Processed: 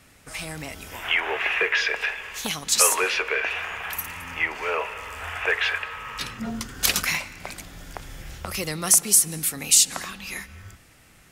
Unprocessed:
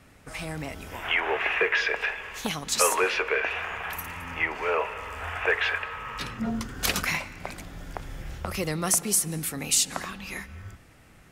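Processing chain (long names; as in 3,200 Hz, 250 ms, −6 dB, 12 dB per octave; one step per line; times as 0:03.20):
high-shelf EQ 2,300 Hz +9.5 dB
level −2 dB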